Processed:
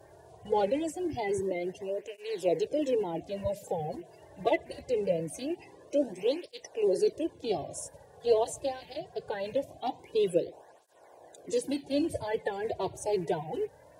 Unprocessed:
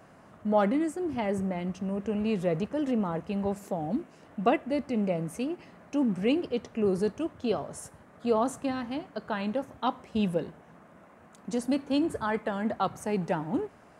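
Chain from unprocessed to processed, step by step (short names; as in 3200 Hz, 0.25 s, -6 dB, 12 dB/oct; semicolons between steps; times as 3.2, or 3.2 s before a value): bin magnitudes rounded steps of 30 dB; dynamic EQ 930 Hz, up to -4 dB, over -43 dBFS, Q 0.94; in parallel at -7 dB: one-sided clip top -25.5 dBFS; on the sum: fixed phaser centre 530 Hz, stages 4; tape flanging out of phase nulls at 0.23 Hz, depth 4.2 ms; gain +4 dB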